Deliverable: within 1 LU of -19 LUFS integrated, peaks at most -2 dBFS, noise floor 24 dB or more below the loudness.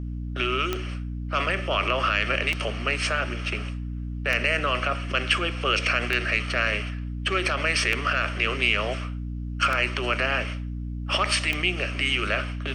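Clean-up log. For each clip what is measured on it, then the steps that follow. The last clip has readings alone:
clicks found 7; hum 60 Hz; highest harmonic 300 Hz; hum level -29 dBFS; loudness -25.0 LUFS; peak level -7.5 dBFS; loudness target -19.0 LUFS
-> de-click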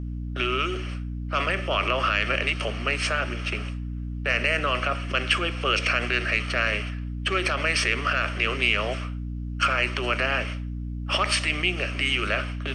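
clicks found 0; hum 60 Hz; highest harmonic 300 Hz; hum level -29 dBFS
-> de-hum 60 Hz, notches 5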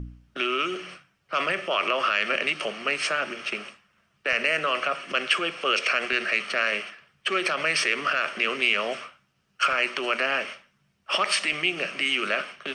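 hum not found; loudness -25.0 LUFS; peak level -8.5 dBFS; loudness target -19.0 LUFS
-> trim +6 dB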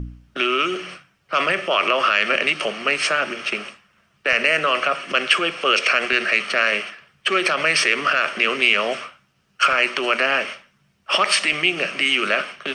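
loudness -19.0 LUFS; peak level -2.5 dBFS; noise floor -64 dBFS

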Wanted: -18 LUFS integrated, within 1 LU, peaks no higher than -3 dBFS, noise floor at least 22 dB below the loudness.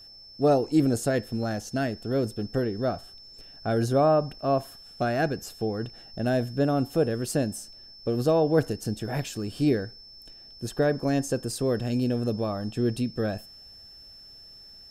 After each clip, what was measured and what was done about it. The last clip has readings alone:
steady tone 5.3 kHz; tone level -46 dBFS; loudness -27.0 LUFS; peak level -8.0 dBFS; loudness target -18.0 LUFS
-> band-stop 5.3 kHz, Q 30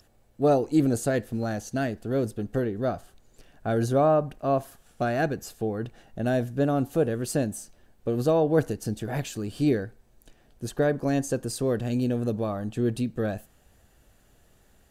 steady tone not found; loudness -27.0 LUFS; peak level -8.0 dBFS; loudness target -18.0 LUFS
-> trim +9 dB; peak limiter -3 dBFS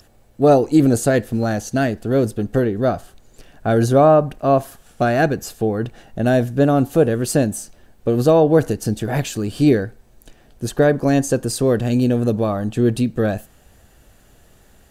loudness -18.0 LUFS; peak level -3.0 dBFS; noise floor -52 dBFS

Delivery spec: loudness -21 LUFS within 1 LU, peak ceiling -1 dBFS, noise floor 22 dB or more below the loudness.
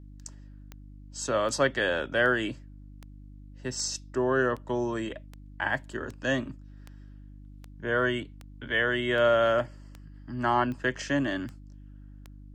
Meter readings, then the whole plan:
clicks found 16; hum 50 Hz; highest harmonic 300 Hz; hum level -45 dBFS; loudness -28.0 LUFS; peak level -11.5 dBFS; loudness target -21.0 LUFS
-> de-click; de-hum 50 Hz, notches 6; trim +7 dB

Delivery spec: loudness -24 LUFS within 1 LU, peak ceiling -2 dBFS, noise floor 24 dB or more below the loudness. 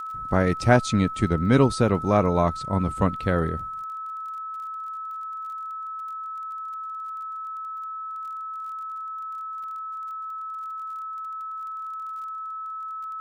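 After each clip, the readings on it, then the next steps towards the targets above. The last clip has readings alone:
tick rate 27 per s; steady tone 1.3 kHz; tone level -31 dBFS; loudness -27.0 LUFS; peak level -4.5 dBFS; loudness target -24.0 LUFS
-> de-click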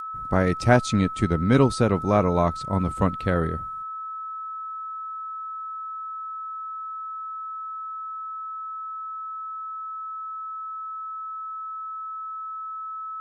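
tick rate 0.076 per s; steady tone 1.3 kHz; tone level -31 dBFS
-> band-stop 1.3 kHz, Q 30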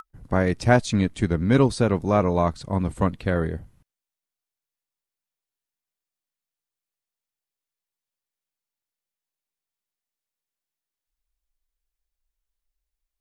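steady tone not found; loudness -22.5 LUFS; peak level -5.0 dBFS; loudness target -24.0 LUFS
-> trim -1.5 dB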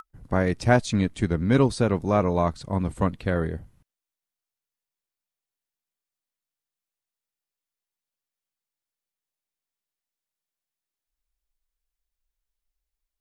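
loudness -24.0 LUFS; peak level -6.5 dBFS; noise floor -90 dBFS

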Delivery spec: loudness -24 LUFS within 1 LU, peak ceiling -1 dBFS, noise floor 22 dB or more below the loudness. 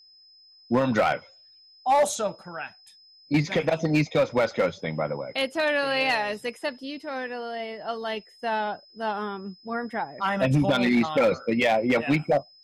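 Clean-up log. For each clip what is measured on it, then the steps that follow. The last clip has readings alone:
clipped samples 1.2%; clipping level -15.5 dBFS; steady tone 5.1 kHz; tone level -52 dBFS; loudness -25.5 LUFS; peak level -15.5 dBFS; loudness target -24.0 LUFS
-> clip repair -15.5 dBFS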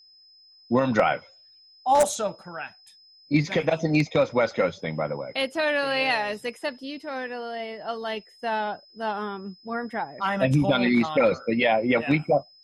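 clipped samples 0.0%; steady tone 5.1 kHz; tone level -52 dBFS
-> band-stop 5.1 kHz, Q 30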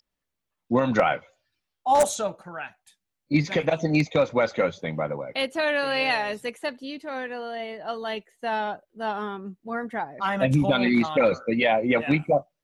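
steady tone not found; loudness -25.0 LUFS; peak level -6.5 dBFS; loudness target -24.0 LUFS
-> trim +1 dB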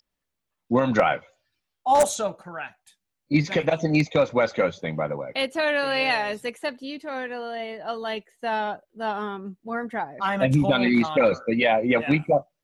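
loudness -24.0 LUFS; peak level -5.5 dBFS; noise floor -82 dBFS

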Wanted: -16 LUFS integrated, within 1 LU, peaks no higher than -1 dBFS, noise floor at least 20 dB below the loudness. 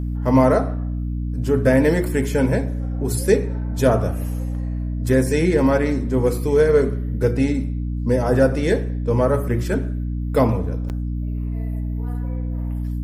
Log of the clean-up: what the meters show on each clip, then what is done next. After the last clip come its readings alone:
dropouts 1; longest dropout 8.8 ms; hum 60 Hz; highest harmonic 300 Hz; hum level -22 dBFS; loudness -20.5 LUFS; peak level -2.5 dBFS; loudness target -16.0 LUFS
-> interpolate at 10.89 s, 8.8 ms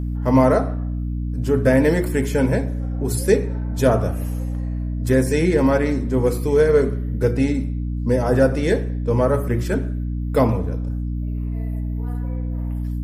dropouts 0; hum 60 Hz; highest harmonic 300 Hz; hum level -22 dBFS
-> hum notches 60/120/180/240/300 Hz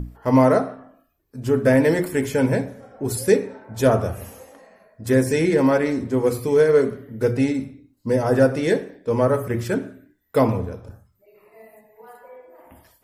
hum not found; loudness -20.5 LUFS; peak level -4.0 dBFS; loudness target -16.0 LUFS
-> trim +4.5 dB; peak limiter -1 dBFS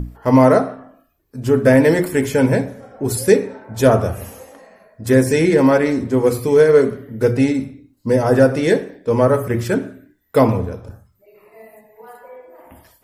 loudness -16.0 LUFS; peak level -1.0 dBFS; noise floor -61 dBFS

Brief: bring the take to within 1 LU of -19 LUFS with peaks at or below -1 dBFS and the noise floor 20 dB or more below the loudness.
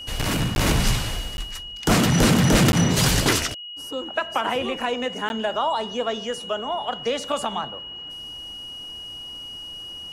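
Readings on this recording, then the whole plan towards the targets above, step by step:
dropouts 4; longest dropout 11 ms; steady tone 2.9 kHz; tone level -34 dBFS; loudness -22.5 LUFS; peak level -10.5 dBFS; loudness target -19.0 LUFS
-> interpolate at 0.55/1.37/2.72/5.29 s, 11 ms; band-stop 2.9 kHz, Q 30; trim +3.5 dB

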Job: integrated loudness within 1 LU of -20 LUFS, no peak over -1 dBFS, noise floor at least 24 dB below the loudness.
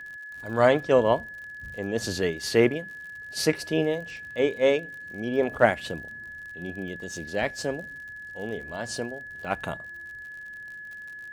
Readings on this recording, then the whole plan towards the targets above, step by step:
tick rate 57 per s; steady tone 1.7 kHz; tone level -38 dBFS; loudness -27.0 LUFS; peak level -3.5 dBFS; loudness target -20.0 LUFS
-> de-click; band-stop 1.7 kHz, Q 30; trim +7 dB; peak limiter -1 dBFS

